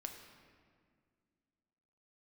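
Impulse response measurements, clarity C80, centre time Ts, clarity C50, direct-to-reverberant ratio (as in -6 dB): 7.0 dB, 39 ms, 6.0 dB, 3.5 dB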